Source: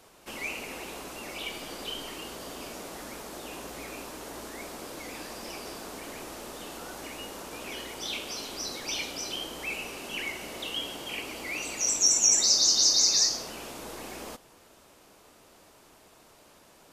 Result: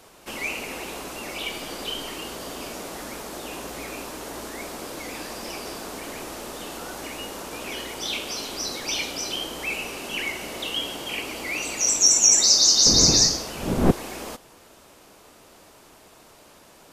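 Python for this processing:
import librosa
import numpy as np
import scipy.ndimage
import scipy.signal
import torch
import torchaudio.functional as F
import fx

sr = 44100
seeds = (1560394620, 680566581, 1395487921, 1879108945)

y = fx.dmg_wind(x, sr, seeds[0], corner_hz=340.0, level_db=-22.0, at=(12.85, 13.9), fade=0.02)
y = y * librosa.db_to_amplitude(5.5)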